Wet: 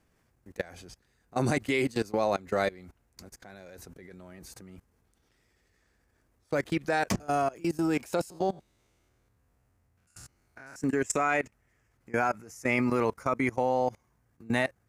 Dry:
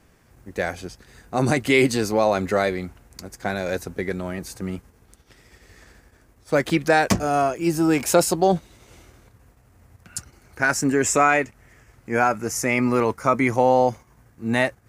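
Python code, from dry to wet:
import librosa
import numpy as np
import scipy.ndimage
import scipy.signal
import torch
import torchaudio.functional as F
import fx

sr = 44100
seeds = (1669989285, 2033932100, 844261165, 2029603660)

y = fx.spec_steps(x, sr, hold_ms=100, at=(8.3, 10.76))
y = fx.level_steps(y, sr, step_db=22)
y = y * 10.0 ** (-4.0 / 20.0)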